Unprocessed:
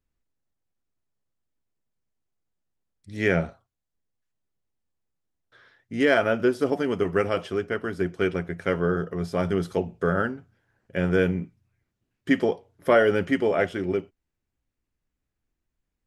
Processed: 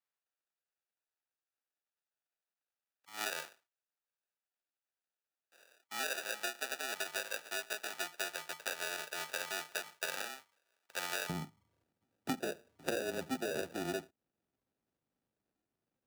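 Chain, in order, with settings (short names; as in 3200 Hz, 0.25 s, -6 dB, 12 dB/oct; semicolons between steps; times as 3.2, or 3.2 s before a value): sample-and-hold 41×; HPF 1100 Hz 12 dB/oct, from 11.29 s 180 Hz; frequency shift -14 Hz; compressor 6:1, threshold -35 dBFS, peak gain reduction 19.5 dB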